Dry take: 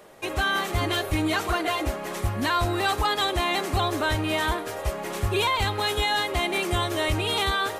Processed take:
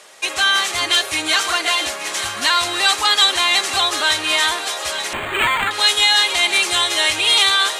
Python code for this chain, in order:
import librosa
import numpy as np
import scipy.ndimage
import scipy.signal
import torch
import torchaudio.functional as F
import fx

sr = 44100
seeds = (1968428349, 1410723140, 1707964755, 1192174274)

y = fx.weighting(x, sr, curve='ITU-R 468')
y = fx.echo_thinned(y, sr, ms=884, feedback_pct=59, hz=420.0, wet_db=-11)
y = fx.resample_linear(y, sr, factor=8, at=(5.13, 5.71))
y = y * librosa.db_to_amplitude(4.5)